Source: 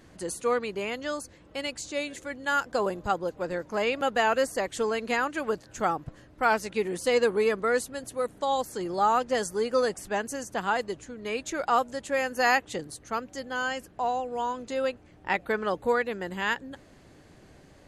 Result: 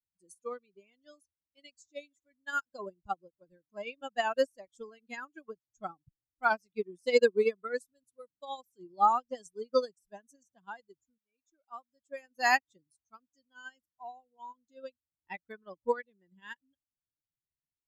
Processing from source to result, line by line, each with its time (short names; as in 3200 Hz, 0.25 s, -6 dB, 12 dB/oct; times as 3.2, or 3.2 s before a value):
11.18–12.34 fade in, from -15 dB
whole clip: per-bin expansion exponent 2; bell 6600 Hz +3 dB 1.3 oct; upward expander 2.5:1, over -41 dBFS; gain +4 dB